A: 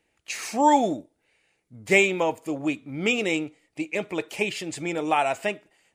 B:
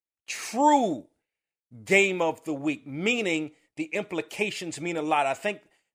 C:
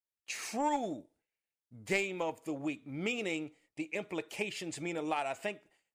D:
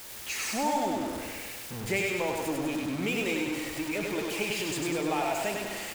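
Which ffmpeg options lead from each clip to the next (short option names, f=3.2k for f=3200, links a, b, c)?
-af "agate=range=-33dB:threshold=-53dB:ratio=3:detection=peak,volume=-1.5dB"
-af "aeval=exprs='0.501*(cos(1*acos(clip(val(0)/0.501,-1,1)))-cos(1*PI/2))+0.0794*(cos(3*acos(clip(val(0)/0.501,-1,1)))-cos(3*PI/2))+0.00562*(cos(6*acos(clip(val(0)/0.501,-1,1)))-cos(6*PI/2))+0.00355*(cos(8*acos(clip(val(0)/0.501,-1,1)))-cos(8*PI/2))':c=same,acompressor=threshold=-34dB:ratio=2"
-af "aeval=exprs='val(0)+0.5*0.0211*sgn(val(0))':c=same,aecho=1:1:99|198|297|396|495|594|693|792|891:0.708|0.418|0.246|0.145|0.0858|0.0506|0.0299|0.0176|0.0104"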